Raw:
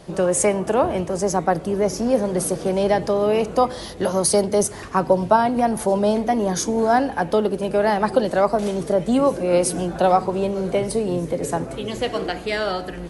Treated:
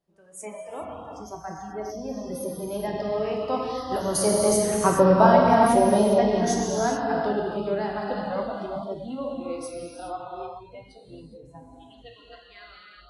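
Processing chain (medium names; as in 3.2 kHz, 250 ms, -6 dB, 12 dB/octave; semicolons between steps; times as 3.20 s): Doppler pass-by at 5.30 s, 8 m/s, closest 6 m; gated-style reverb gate 450 ms flat, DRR -3 dB; spectral noise reduction 19 dB; trim -2.5 dB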